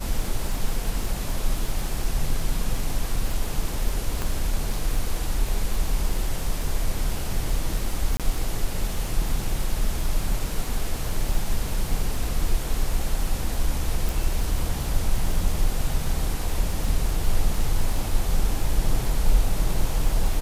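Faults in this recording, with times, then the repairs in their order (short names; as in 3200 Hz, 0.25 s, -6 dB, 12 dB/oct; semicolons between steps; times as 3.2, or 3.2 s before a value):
crackle 38/s -28 dBFS
4.22 pop -13 dBFS
8.17–8.2 gap 27 ms
14.09 pop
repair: de-click; interpolate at 8.17, 27 ms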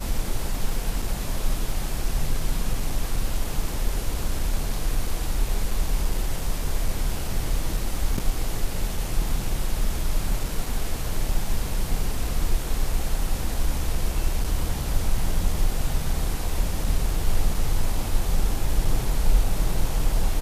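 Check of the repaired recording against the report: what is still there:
4.22 pop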